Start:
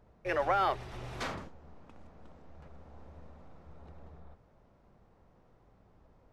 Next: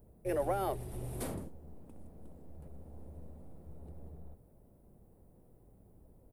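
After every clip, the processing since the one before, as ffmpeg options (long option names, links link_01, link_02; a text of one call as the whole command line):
ffmpeg -i in.wav -af "firequalizer=gain_entry='entry(360,0);entry(1200,-17);entry(6300,-10);entry(9400,14)':delay=0.05:min_phase=1,volume=3dB" out.wav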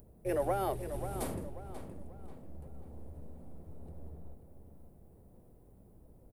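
ffmpeg -i in.wav -filter_complex "[0:a]acompressor=mode=upward:threshold=-56dB:ratio=2.5,asplit=2[link_01][link_02];[link_02]adelay=538,lowpass=frequency=3700:poles=1,volume=-9.5dB,asplit=2[link_03][link_04];[link_04]adelay=538,lowpass=frequency=3700:poles=1,volume=0.38,asplit=2[link_05][link_06];[link_06]adelay=538,lowpass=frequency=3700:poles=1,volume=0.38,asplit=2[link_07][link_08];[link_08]adelay=538,lowpass=frequency=3700:poles=1,volume=0.38[link_09];[link_03][link_05][link_07][link_09]amix=inputs=4:normalize=0[link_10];[link_01][link_10]amix=inputs=2:normalize=0,volume=1dB" out.wav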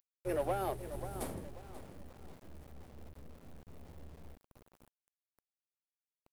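ffmpeg -i in.wav -af "aeval=exprs='val(0)*gte(abs(val(0)),0.00447)':channel_layout=same,aeval=exprs='0.0891*(cos(1*acos(clip(val(0)/0.0891,-1,1)))-cos(1*PI/2))+0.00224*(cos(5*acos(clip(val(0)/0.0891,-1,1)))-cos(5*PI/2))+0.00562*(cos(7*acos(clip(val(0)/0.0891,-1,1)))-cos(7*PI/2))':channel_layout=same,volume=-2.5dB" out.wav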